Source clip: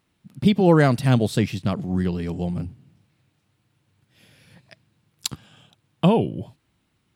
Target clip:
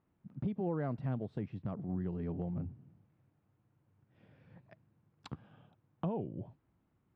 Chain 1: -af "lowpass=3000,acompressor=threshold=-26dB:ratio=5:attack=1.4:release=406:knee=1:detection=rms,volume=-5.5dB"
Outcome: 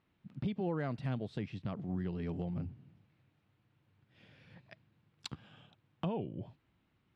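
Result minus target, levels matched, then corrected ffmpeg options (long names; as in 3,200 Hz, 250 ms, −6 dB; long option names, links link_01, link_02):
4,000 Hz band +12.0 dB
-af "lowpass=1200,acompressor=threshold=-26dB:ratio=5:attack=1.4:release=406:knee=1:detection=rms,volume=-5.5dB"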